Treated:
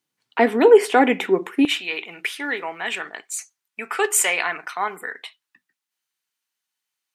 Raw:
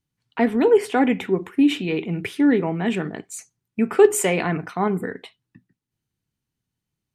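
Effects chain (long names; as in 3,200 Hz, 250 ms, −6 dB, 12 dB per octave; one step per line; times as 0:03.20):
high-pass filter 370 Hz 12 dB per octave, from 0:01.65 1,100 Hz
level +6 dB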